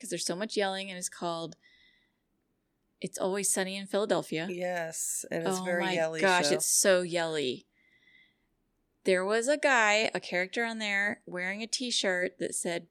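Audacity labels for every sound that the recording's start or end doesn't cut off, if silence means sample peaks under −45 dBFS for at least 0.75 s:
3.020000	7.600000	sound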